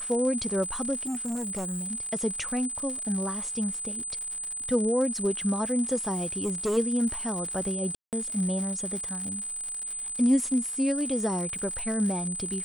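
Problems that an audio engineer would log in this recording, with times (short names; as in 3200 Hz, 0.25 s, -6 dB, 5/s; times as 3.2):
crackle 150/s -34 dBFS
tone 8100 Hz -32 dBFS
1.01–1.91 clipped -28.5 dBFS
6.14–6.78 clipped -23.5 dBFS
7.95–8.13 gap 0.178 s
11.58–11.59 gap 5.8 ms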